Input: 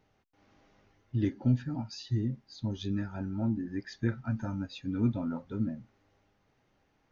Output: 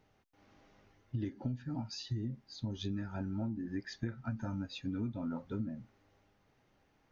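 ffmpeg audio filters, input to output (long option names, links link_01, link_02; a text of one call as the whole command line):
ffmpeg -i in.wav -af "acompressor=threshold=-33dB:ratio=16" out.wav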